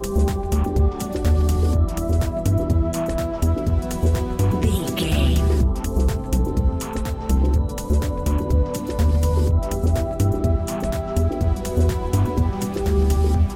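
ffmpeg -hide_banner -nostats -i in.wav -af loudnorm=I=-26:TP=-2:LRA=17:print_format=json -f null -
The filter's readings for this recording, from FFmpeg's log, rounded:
"input_i" : "-21.5",
"input_tp" : "-8.3",
"input_lra" : "0.7",
"input_thresh" : "-31.5",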